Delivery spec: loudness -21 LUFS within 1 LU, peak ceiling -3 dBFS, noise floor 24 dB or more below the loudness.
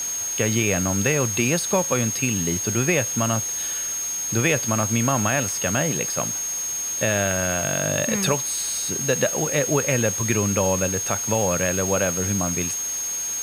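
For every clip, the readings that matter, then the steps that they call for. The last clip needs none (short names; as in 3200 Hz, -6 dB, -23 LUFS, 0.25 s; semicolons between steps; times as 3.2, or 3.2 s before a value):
steady tone 6500 Hz; tone level -25 dBFS; noise floor -28 dBFS; noise floor target -46 dBFS; loudness -21.5 LUFS; peak -7.0 dBFS; loudness target -21.0 LUFS
-> notch 6500 Hz, Q 30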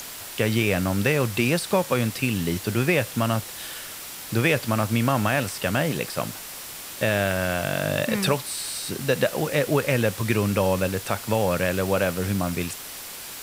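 steady tone none; noise floor -38 dBFS; noise floor target -48 dBFS
-> denoiser 10 dB, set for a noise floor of -38 dBFS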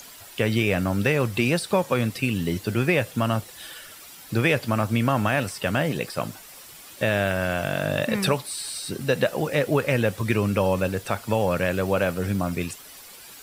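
noise floor -45 dBFS; noise floor target -49 dBFS
-> denoiser 6 dB, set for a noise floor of -45 dBFS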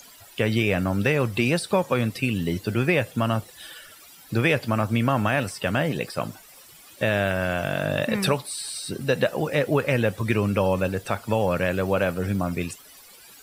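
noise floor -49 dBFS; loudness -24.5 LUFS; peak -8.0 dBFS; loudness target -21.0 LUFS
-> gain +3.5 dB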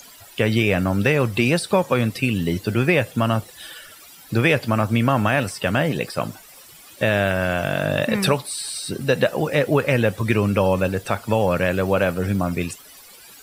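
loudness -21.0 LUFS; peak -4.5 dBFS; noise floor -45 dBFS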